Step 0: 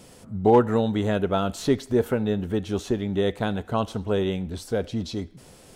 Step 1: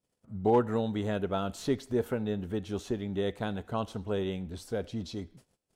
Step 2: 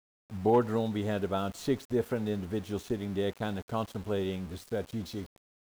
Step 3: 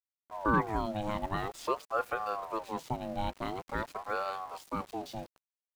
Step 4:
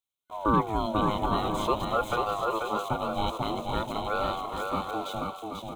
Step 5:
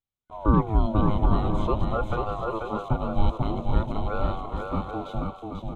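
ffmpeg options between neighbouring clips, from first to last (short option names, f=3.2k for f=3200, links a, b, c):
-af "agate=range=-31dB:threshold=-45dB:ratio=16:detection=peak,volume=-7.5dB"
-af "aeval=exprs='val(0)*gte(abs(val(0)),0.00562)':c=same"
-af "aeval=exprs='val(0)*sin(2*PI*690*n/s+690*0.4/0.47*sin(2*PI*0.47*n/s))':c=same"
-af "superequalizer=11b=0.251:13b=2:14b=0.355,aecho=1:1:490|784|960.4|1066|1130:0.631|0.398|0.251|0.158|0.1,volume=4dB"
-af "aemphasis=mode=reproduction:type=riaa,volume=-2.5dB"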